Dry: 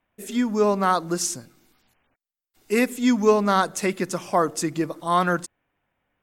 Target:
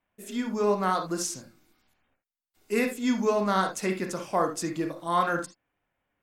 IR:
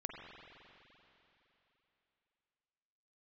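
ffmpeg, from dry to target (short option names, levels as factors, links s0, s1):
-filter_complex "[1:a]atrim=start_sample=2205,atrim=end_sample=6174,asetrate=70560,aresample=44100[s0];[0:a][s0]afir=irnorm=-1:irlink=0,volume=1.26"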